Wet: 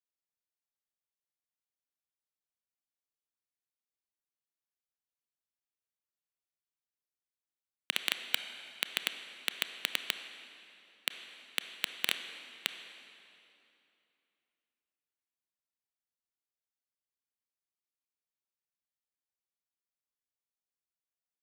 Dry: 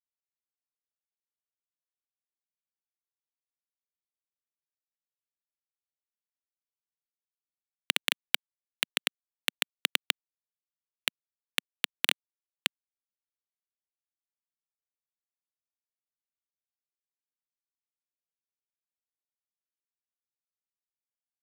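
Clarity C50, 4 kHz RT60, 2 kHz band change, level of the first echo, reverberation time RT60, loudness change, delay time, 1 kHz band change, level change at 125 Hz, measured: 8.5 dB, 2.3 s, −4.0 dB, no echo audible, 2.9 s, −4.0 dB, no echo audible, −4.0 dB, can't be measured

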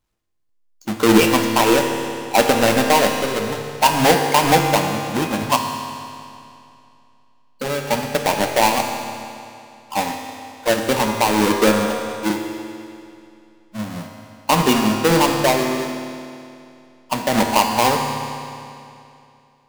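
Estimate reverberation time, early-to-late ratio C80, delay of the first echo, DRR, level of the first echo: 2.6 s, 5.0 dB, no echo audible, 2.5 dB, no echo audible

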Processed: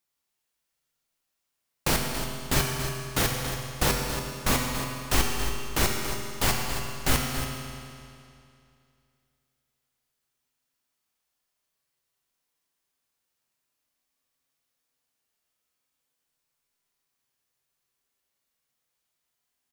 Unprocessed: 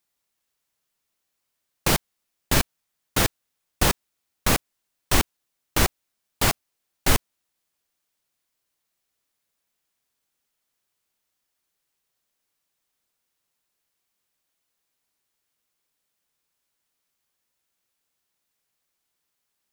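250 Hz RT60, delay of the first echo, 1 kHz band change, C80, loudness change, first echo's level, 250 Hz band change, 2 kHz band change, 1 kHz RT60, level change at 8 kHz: 2.5 s, 280 ms, −1.5 dB, 2.5 dB, −3.0 dB, −10.0 dB, −1.5 dB, −2.0 dB, 2.5 s, −2.0 dB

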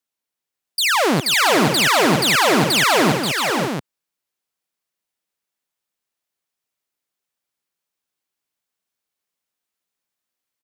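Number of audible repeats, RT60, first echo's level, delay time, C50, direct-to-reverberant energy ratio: 4, no reverb audible, −18.0 dB, 139 ms, no reverb audible, no reverb audible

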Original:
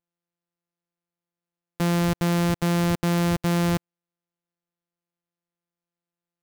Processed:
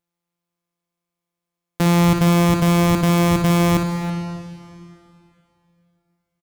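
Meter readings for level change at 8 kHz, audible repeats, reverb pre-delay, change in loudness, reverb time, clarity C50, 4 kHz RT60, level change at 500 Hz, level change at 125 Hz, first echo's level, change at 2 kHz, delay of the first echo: +6.5 dB, 2, 5 ms, +6.5 dB, 2.8 s, 4.5 dB, 2.5 s, +6.5 dB, +7.0 dB, −9.5 dB, +6.0 dB, 59 ms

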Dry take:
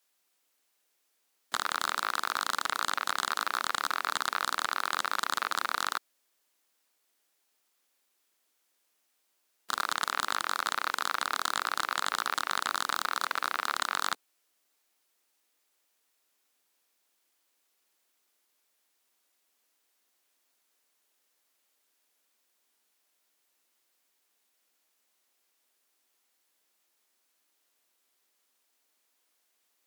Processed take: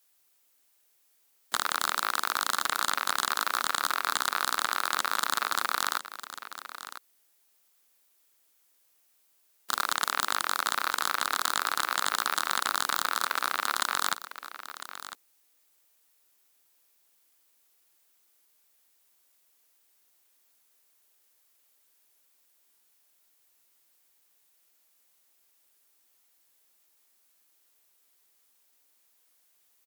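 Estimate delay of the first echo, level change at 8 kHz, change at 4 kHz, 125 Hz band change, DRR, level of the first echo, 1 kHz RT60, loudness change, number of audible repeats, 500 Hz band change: 1,003 ms, +5.5 dB, +3.0 dB, can't be measured, no reverb audible, −13.0 dB, no reverb audible, +2.0 dB, 1, +1.5 dB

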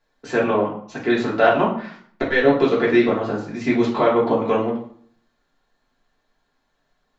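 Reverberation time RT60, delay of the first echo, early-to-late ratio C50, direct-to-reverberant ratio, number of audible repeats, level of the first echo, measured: 0.60 s, no echo audible, 6.5 dB, −6.0 dB, no echo audible, no echo audible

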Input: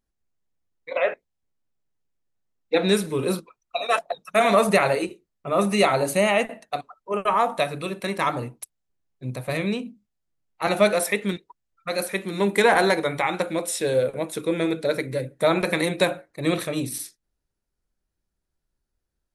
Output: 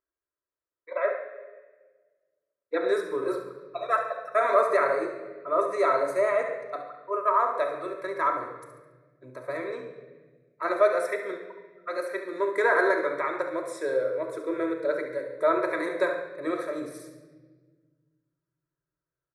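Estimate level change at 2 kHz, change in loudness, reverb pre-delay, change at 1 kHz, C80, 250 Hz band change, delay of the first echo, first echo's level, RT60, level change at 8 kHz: −4.5 dB, −4.0 dB, 3 ms, −2.5 dB, 8.5 dB, −9.0 dB, 70 ms, −9.0 dB, 1.3 s, below −15 dB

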